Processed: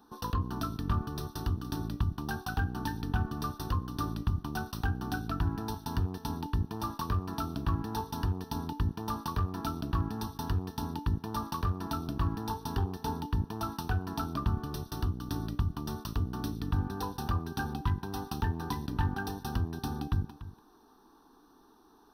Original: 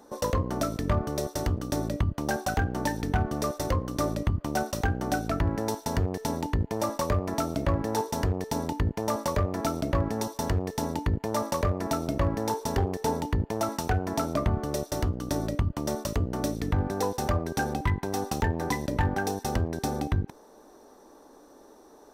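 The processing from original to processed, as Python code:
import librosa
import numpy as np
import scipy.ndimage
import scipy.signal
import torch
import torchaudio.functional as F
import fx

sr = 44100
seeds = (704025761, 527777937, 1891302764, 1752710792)

y = fx.fixed_phaser(x, sr, hz=2100.0, stages=6)
y = y + 10.0 ** (-14.5 / 20.0) * np.pad(y, (int(290 * sr / 1000.0), 0))[:len(y)]
y = F.gain(torch.from_numpy(y), -3.0).numpy()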